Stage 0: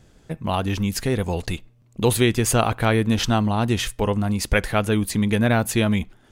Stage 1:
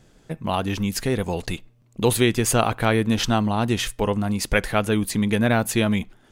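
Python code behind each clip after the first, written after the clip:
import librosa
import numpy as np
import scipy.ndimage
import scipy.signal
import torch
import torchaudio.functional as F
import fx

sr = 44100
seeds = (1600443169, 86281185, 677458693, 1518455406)

y = fx.peak_eq(x, sr, hz=67.0, db=-8.5, octaves=0.97)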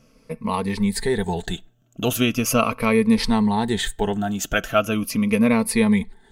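y = fx.spec_ripple(x, sr, per_octave=0.91, drift_hz=-0.39, depth_db=14)
y = y + 0.44 * np.pad(y, (int(4.5 * sr / 1000.0), 0))[:len(y)]
y = y * 10.0 ** (-2.5 / 20.0)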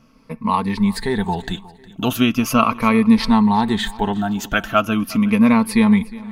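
y = fx.graphic_eq(x, sr, hz=(250, 500, 1000, 4000, 8000), db=(6, -6, 9, 3, -7))
y = fx.echo_feedback(y, sr, ms=361, feedback_pct=43, wet_db=-20.5)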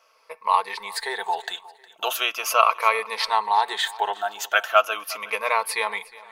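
y = scipy.signal.sosfilt(scipy.signal.cheby2(4, 40, 260.0, 'highpass', fs=sr, output='sos'), x)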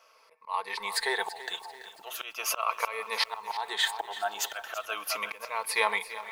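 y = fx.auto_swell(x, sr, attack_ms=386.0)
y = fx.echo_crushed(y, sr, ms=334, feedback_pct=55, bits=8, wet_db=-14.5)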